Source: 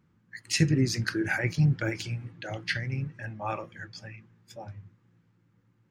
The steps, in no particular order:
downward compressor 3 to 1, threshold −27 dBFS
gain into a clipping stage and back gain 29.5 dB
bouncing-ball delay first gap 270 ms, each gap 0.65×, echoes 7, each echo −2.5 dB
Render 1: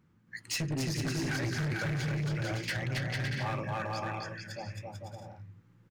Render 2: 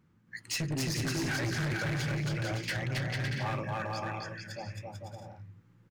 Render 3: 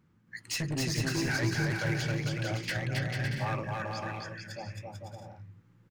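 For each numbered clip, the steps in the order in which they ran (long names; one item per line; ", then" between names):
bouncing-ball delay, then downward compressor, then gain into a clipping stage and back
downward compressor, then bouncing-ball delay, then gain into a clipping stage and back
downward compressor, then gain into a clipping stage and back, then bouncing-ball delay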